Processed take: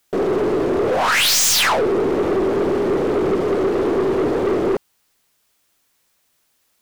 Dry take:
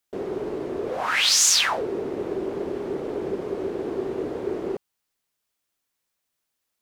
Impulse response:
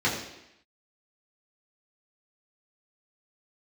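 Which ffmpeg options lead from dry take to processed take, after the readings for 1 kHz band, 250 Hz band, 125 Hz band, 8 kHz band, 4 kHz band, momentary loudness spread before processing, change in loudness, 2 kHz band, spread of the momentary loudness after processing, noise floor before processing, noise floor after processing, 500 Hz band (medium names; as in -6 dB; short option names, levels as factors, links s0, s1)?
+9.5 dB, +10.5 dB, +11.0 dB, +1.5 dB, +3.0 dB, 14 LU, +6.5 dB, +6.0 dB, 6 LU, -80 dBFS, -65 dBFS, +10.5 dB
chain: -af "aeval=exprs='0.501*sin(PI/2*3.98*val(0)/0.501)':c=same,aeval=exprs='(tanh(4.47*val(0)+0.15)-tanh(0.15))/4.47':c=same,volume=0.891"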